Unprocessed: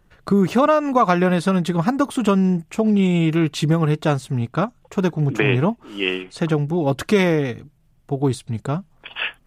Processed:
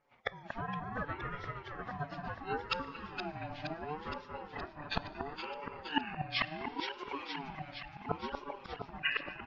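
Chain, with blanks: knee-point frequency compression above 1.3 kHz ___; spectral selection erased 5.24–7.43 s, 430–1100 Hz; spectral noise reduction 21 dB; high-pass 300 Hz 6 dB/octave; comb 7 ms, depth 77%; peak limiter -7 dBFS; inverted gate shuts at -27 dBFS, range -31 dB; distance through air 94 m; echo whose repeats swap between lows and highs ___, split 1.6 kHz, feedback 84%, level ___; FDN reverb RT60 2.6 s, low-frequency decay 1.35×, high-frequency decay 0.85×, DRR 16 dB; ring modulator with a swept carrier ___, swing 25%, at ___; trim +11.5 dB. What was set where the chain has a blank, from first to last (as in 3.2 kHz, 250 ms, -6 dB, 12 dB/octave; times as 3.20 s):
1.5:1, 234 ms, -5.5 dB, 570 Hz, 0.71 Hz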